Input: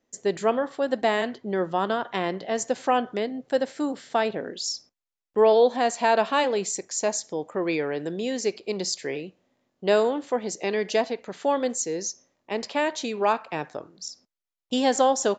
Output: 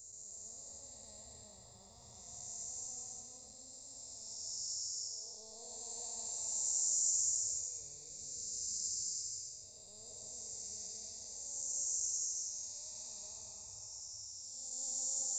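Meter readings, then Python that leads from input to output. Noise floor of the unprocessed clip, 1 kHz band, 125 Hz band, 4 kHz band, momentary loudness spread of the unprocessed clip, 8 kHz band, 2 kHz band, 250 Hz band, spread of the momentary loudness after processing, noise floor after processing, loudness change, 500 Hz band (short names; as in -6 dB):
under -85 dBFS, under -35 dB, under -20 dB, -12.5 dB, 11 LU, -1.0 dB, under -40 dB, under -35 dB, 17 LU, -56 dBFS, -13.0 dB, -39.0 dB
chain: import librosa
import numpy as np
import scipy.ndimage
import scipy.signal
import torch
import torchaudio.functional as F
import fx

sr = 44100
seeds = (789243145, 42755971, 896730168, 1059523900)

y = fx.spec_blur(x, sr, span_ms=626.0)
y = scipy.signal.sosfilt(scipy.signal.cheby2(4, 40, [150.0, 3300.0], 'bandstop', fs=sr, output='sos'), y)
y = fx.echo_stepped(y, sr, ms=596, hz=1100.0, octaves=1.4, feedback_pct=70, wet_db=-9)
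y = fx.rev_gated(y, sr, seeds[0], gate_ms=380, shape='rising', drr_db=1.0)
y = y * librosa.db_to_amplitude(7.0)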